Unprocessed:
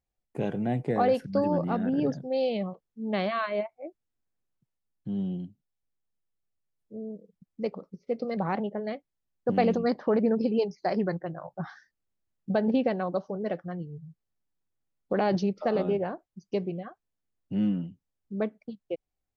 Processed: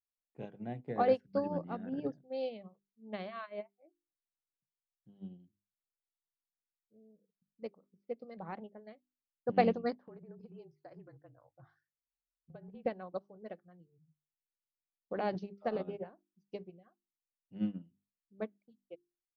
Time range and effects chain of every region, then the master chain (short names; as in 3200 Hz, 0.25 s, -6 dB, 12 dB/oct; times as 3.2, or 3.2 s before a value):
9.95–12.86 high shelf 3900 Hz -10 dB + compressor 8:1, threshold -28 dBFS + frequency shift -35 Hz
whole clip: LPF 5400 Hz; notches 50/100/150/200/250/300/350/400 Hz; upward expander 2.5:1, over -35 dBFS; gain -1 dB